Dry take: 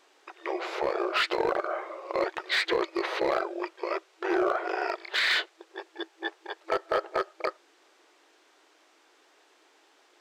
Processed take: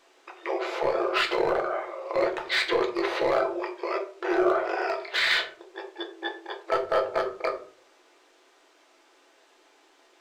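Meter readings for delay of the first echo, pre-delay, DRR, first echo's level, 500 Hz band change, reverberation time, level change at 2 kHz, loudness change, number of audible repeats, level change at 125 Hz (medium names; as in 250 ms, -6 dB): no echo, 4 ms, 2.0 dB, no echo, +3.5 dB, 0.50 s, +1.5 dB, +2.5 dB, no echo, no reading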